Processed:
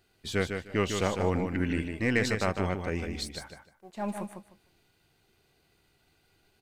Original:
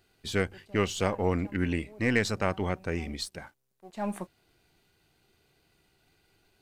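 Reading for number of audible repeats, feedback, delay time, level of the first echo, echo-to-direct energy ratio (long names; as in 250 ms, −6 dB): 3, 20%, 152 ms, −6.0 dB, −6.0 dB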